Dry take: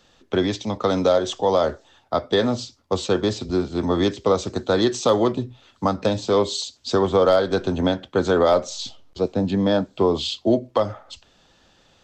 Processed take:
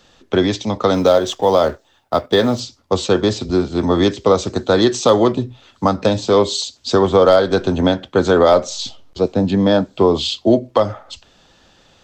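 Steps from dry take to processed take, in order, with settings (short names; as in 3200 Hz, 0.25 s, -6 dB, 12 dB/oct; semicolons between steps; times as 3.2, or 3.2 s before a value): 0.94–2.6 G.711 law mismatch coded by A; gain +5.5 dB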